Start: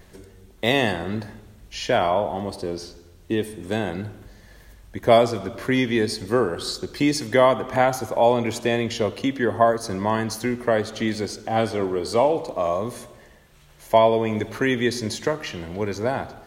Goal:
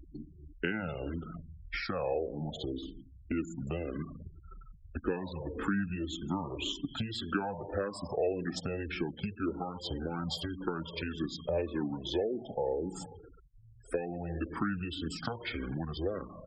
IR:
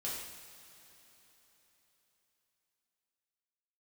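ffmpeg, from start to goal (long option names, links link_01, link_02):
-filter_complex "[0:a]asplit=2[link_01][link_02];[link_02]acrusher=bits=5:mix=0:aa=0.000001,volume=-5.5dB[link_03];[link_01][link_03]amix=inputs=2:normalize=0,asetrate=34006,aresample=44100,atempo=1.29684,asplit=2[link_04][link_05];[link_05]bandpass=frequency=3200:width_type=q:width=19:csg=0[link_06];[1:a]atrim=start_sample=2205[link_07];[link_06][link_07]afir=irnorm=-1:irlink=0,volume=-3.5dB[link_08];[link_04][link_08]amix=inputs=2:normalize=0,acompressor=threshold=-32dB:ratio=4,afftfilt=real='re*gte(hypot(re,im),0.0112)':imag='im*gte(hypot(re,im),0.0112)':win_size=1024:overlap=0.75,asplit=2[link_09][link_10];[link_10]afreqshift=-1.8[link_11];[link_09][link_11]amix=inputs=2:normalize=1,volume=1.5dB"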